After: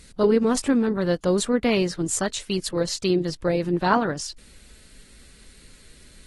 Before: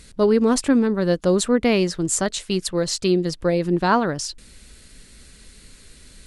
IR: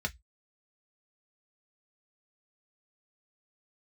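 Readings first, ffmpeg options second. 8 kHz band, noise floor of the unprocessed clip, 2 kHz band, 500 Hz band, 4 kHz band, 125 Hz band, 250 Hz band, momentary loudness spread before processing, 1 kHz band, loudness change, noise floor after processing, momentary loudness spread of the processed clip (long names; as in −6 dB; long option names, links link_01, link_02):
−3.5 dB, −48 dBFS, −2.0 dB, −2.5 dB, −2.5 dB, −3.0 dB, −3.0 dB, 6 LU, −2.0 dB, −2.5 dB, −51 dBFS, 6 LU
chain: -af "volume=-3dB" -ar 48000 -c:a aac -b:a 32k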